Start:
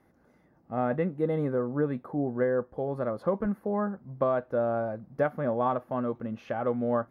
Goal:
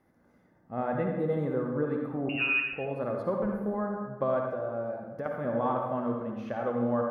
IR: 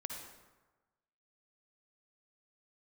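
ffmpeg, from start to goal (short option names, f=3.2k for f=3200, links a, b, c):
-filter_complex "[0:a]asettb=1/sr,asplit=3[a][b][c];[a]atrim=end=2.294[d];[b]atrim=start=2.29:end=2.73,asetpts=PTS-STARTPTS,afade=t=in:d=0.004:c=qsin,afade=t=out:st=0.436:d=0.004:c=qsin,lowpass=f=2.6k:t=q:w=0.5098,lowpass=f=2.6k:t=q:w=0.6013,lowpass=f=2.6k:t=q:w=0.9,lowpass=f=2.6k:t=q:w=2.563,afreqshift=-3000[e];[c]atrim=start=2.726[f];[d][e]acrossfade=d=0.004:c1=hsin:c2=qsin[g];[g][f]acrossfade=d=0.004:c1=qsin:c2=hsin,asettb=1/sr,asplit=3[h][i][j];[h]atrim=end=4.484[k];[i]atrim=start=4.48:end=5.26,asetpts=PTS-STARTPTS,afade=t=in:d=0.004:c=qsin,afade=t=out:st=0.776:d=0.004:c=qsin,acompressor=threshold=-33dB:ratio=3[l];[j]atrim=start=5.256[m];[k][l]acrossfade=d=0.004:c1=hsin:c2=qsin[n];[n][m]acrossfade=d=0.004:c1=qsin:c2=hsin[o];[1:a]atrim=start_sample=2205[p];[o][p]afir=irnorm=-1:irlink=0"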